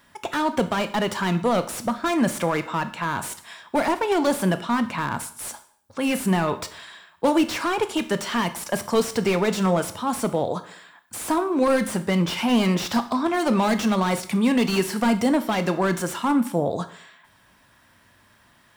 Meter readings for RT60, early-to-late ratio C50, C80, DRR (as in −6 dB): 0.60 s, 14.0 dB, 17.5 dB, 10.0 dB